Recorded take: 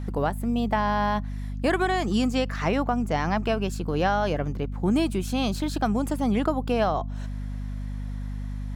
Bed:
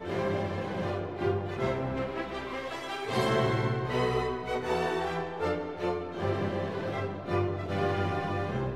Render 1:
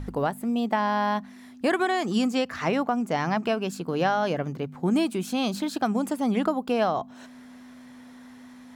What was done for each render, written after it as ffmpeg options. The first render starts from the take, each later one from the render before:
-af "bandreject=f=50:t=h:w=4,bandreject=f=100:t=h:w=4,bandreject=f=150:t=h:w=4,bandreject=f=200:t=h:w=4"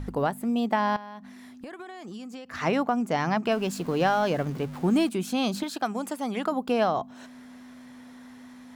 -filter_complex "[0:a]asettb=1/sr,asplit=3[s0][s1][s2];[s0]atrim=end=0.964[s3];[s1]atrim=start=0.96:end=2.54,asetpts=PTS-STARTPTS,afade=t=in:d=0.004:c=qsin,afade=t=out:st=1.576:d=0.004:c=qsin,acompressor=threshold=0.0158:ratio=16:attack=3.2:release=140:knee=1:detection=peak[s4];[s2]atrim=start=2.536[s5];[s3][s4]acrossfade=d=0.004:c1=hsin:c2=qsin[s6];[s6][s5]acrossfade=d=0.004:c1=qsin:c2=hsin,asettb=1/sr,asplit=3[s7][s8][s9];[s7]atrim=end=3.514[s10];[s8]atrim=start=3.51:end=5.09,asetpts=PTS-STARTPTS,afade=t=in:d=0.004:c=qsin,afade=t=out:st=1.576:d=0.004:c=qsin,aeval=exprs='val(0)+0.5*0.0112*sgn(val(0))':c=same[s11];[s9]atrim=start=5.086[s12];[s10][s11]acrossfade=d=0.004:c1=hsin:c2=qsin[s13];[s13][s12]acrossfade=d=0.004:c1=qsin:c2=hsin,asettb=1/sr,asplit=3[s14][s15][s16];[s14]atrim=end=5.634[s17];[s15]atrim=start=5.63:end=6.52,asetpts=PTS-STARTPTS,afade=t=in:d=0.004:c=qsin,afade=t=out:st=0.886:d=0.004:c=qsin,lowshelf=f=330:g=-11[s18];[s16]atrim=start=6.516[s19];[s17][s18]acrossfade=d=0.004:c1=hsin:c2=qsin[s20];[s20][s19]acrossfade=d=0.004:c1=qsin:c2=hsin"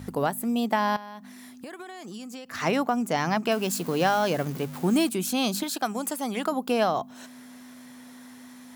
-af "highpass=96,aemphasis=mode=production:type=50kf"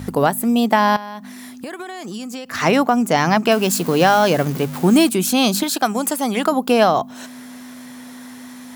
-af "volume=2.99,alimiter=limit=0.794:level=0:latency=1"

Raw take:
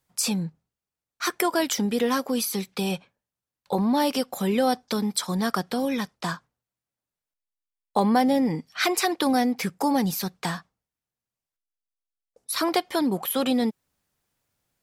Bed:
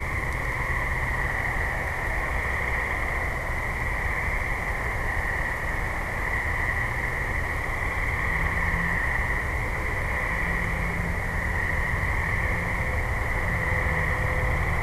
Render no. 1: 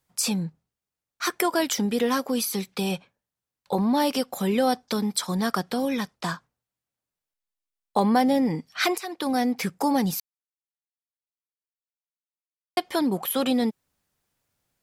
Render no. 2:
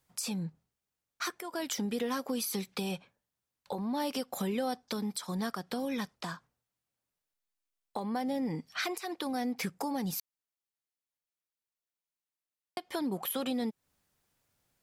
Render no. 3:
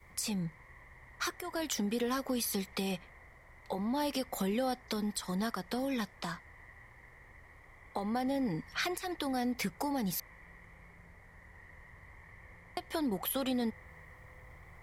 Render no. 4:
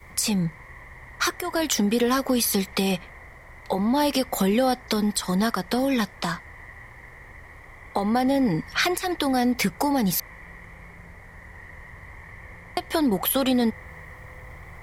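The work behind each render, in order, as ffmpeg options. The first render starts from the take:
-filter_complex "[0:a]asplit=4[s0][s1][s2][s3];[s0]atrim=end=8.98,asetpts=PTS-STARTPTS,afade=t=out:st=8.976:d=0.004:c=hsin:silence=0.16788[s4];[s1]atrim=start=8.98:end=10.2,asetpts=PTS-STARTPTS,afade=t=in:d=0.53:silence=0.16788,afade=t=out:st=1.216:d=0.004:c=hsin[s5];[s2]atrim=start=10.2:end=12.77,asetpts=PTS-STARTPTS,volume=0[s6];[s3]atrim=start=12.77,asetpts=PTS-STARTPTS,afade=t=in:d=0.004:c=hsin[s7];[s4][s5][s6][s7]concat=n=4:v=0:a=1"
-af "acompressor=threshold=0.0224:ratio=3,alimiter=limit=0.0708:level=0:latency=1:release=277"
-filter_complex "[1:a]volume=0.0355[s0];[0:a][s0]amix=inputs=2:normalize=0"
-af "volume=3.76"

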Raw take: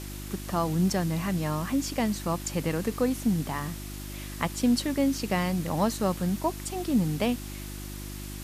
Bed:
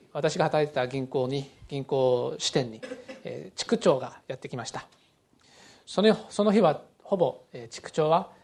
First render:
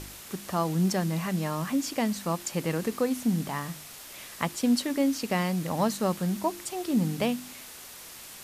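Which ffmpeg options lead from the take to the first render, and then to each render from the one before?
-af "bandreject=f=50:t=h:w=4,bandreject=f=100:t=h:w=4,bandreject=f=150:t=h:w=4,bandreject=f=200:t=h:w=4,bandreject=f=250:t=h:w=4,bandreject=f=300:t=h:w=4,bandreject=f=350:t=h:w=4"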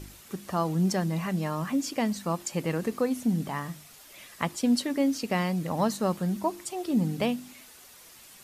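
-af "afftdn=nr=8:nf=-45"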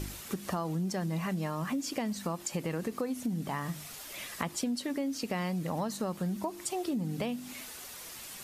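-filter_complex "[0:a]asplit=2[s0][s1];[s1]alimiter=limit=0.0794:level=0:latency=1,volume=1[s2];[s0][s2]amix=inputs=2:normalize=0,acompressor=threshold=0.0282:ratio=6"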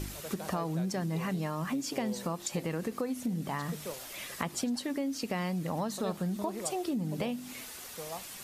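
-filter_complex "[1:a]volume=0.106[s0];[0:a][s0]amix=inputs=2:normalize=0"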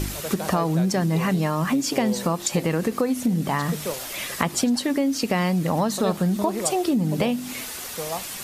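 -af "volume=3.55"

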